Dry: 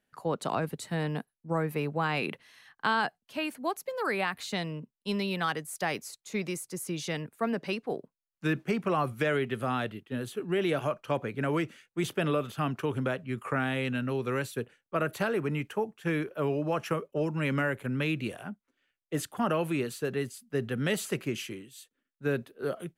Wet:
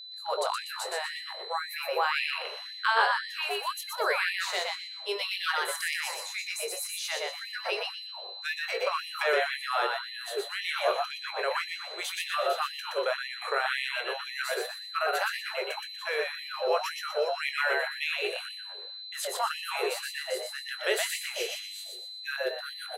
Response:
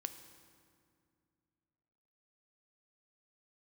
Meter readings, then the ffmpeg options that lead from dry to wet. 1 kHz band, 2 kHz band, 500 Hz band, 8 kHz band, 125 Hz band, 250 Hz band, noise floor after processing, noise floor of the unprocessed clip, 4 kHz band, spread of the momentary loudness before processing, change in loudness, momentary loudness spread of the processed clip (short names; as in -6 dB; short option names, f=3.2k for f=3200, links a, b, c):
+3.0 dB, +5.0 dB, -1.0 dB, +5.0 dB, under -40 dB, under -20 dB, -42 dBFS, under -85 dBFS, +9.0 dB, 7 LU, +1.0 dB, 8 LU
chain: -filter_complex "[0:a]asplit=2[a][b];[b]adelay=22,volume=-8.5dB[c];[a][c]amix=inputs=2:normalize=0,aeval=exprs='val(0)+0.00631*sin(2*PI*4000*n/s)':c=same,asplit=5[d][e][f][g][h];[e]adelay=121,afreqshift=100,volume=-3dB[i];[f]adelay=242,afreqshift=200,volume=-12.6dB[j];[g]adelay=363,afreqshift=300,volume=-22.3dB[k];[h]adelay=484,afreqshift=400,volume=-31.9dB[l];[d][i][j][k][l]amix=inputs=5:normalize=0,asplit=2[m][n];[1:a]atrim=start_sample=2205[o];[n][o]afir=irnorm=-1:irlink=0,volume=1.5dB[p];[m][p]amix=inputs=2:normalize=0,afftfilt=real='re*gte(b*sr/1024,360*pow(1800/360,0.5+0.5*sin(2*PI*1.9*pts/sr)))':imag='im*gte(b*sr/1024,360*pow(1800/360,0.5+0.5*sin(2*PI*1.9*pts/sr)))':win_size=1024:overlap=0.75,volume=-3dB"